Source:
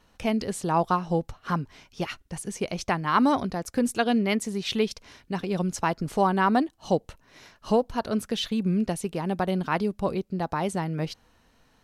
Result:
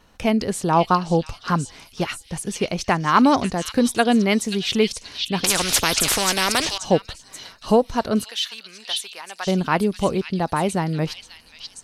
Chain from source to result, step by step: 8.24–9.47 s: high-pass 1.5 kHz 12 dB/octave; repeats whose band climbs or falls 533 ms, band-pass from 3.8 kHz, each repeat 0.7 oct, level -0.5 dB; 5.44–6.78 s: spectrum-flattening compressor 4:1; trim +6 dB

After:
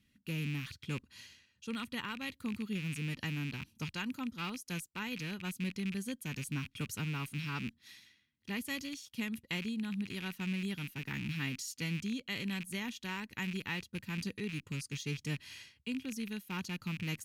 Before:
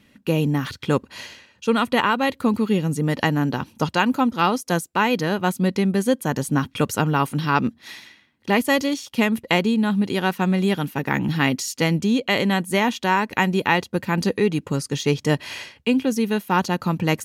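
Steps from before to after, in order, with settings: rattle on loud lows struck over -33 dBFS, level -16 dBFS; amplifier tone stack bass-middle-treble 6-0-2; trim +1 dB

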